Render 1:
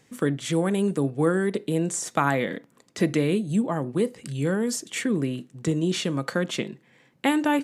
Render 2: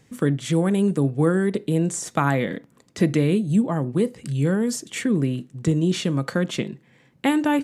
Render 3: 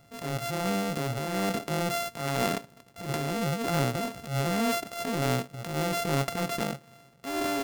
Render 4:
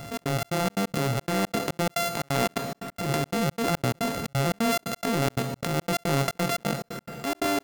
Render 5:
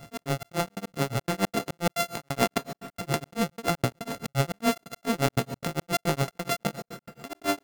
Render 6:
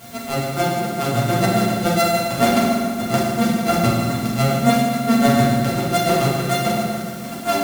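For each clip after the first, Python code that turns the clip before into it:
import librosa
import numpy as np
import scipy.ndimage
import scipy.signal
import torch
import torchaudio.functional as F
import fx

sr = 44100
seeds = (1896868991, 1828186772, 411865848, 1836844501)

y1 = fx.low_shelf(x, sr, hz=160.0, db=11.5)
y2 = np.r_[np.sort(y1[:len(y1) // 64 * 64].reshape(-1, 64), axis=1).ravel(), y1[len(y1) // 64 * 64:]]
y2 = fx.over_compress(y2, sr, threshold_db=-22.0, ratio=-0.5)
y2 = fx.transient(y2, sr, attack_db=-12, sustain_db=3)
y2 = F.gain(torch.from_numpy(y2), -3.5).numpy()
y3 = fx.rev_plate(y2, sr, seeds[0], rt60_s=1.9, hf_ratio=0.8, predelay_ms=90, drr_db=16.0)
y3 = fx.step_gate(y3, sr, bpm=176, pattern='xx.xx.xx.x.x', floor_db=-60.0, edge_ms=4.5)
y3 = fx.env_flatten(y3, sr, amount_pct=50)
y3 = F.gain(torch.from_numpy(y3), 2.0).numpy()
y4 = fx.tremolo_shape(y3, sr, shape='triangle', hz=7.1, depth_pct=100)
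y4 = fx.upward_expand(y4, sr, threshold_db=-44.0, expansion=1.5)
y4 = F.gain(torch.from_numpy(y4), 4.5).numpy()
y5 = fx.quant_dither(y4, sr, seeds[1], bits=8, dither='triangular')
y5 = fx.vibrato(y5, sr, rate_hz=5.4, depth_cents=26.0)
y5 = fx.rev_fdn(y5, sr, rt60_s=1.9, lf_ratio=1.4, hf_ratio=0.75, size_ms=26.0, drr_db=-8.5)
y5 = F.gain(torch.from_numpy(y5), -1.0).numpy()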